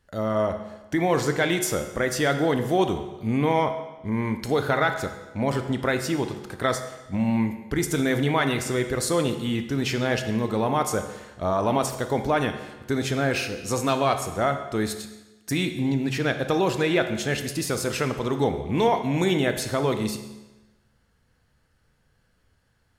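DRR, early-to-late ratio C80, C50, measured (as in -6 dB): 7.0 dB, 11.0 dB, 9.0 dB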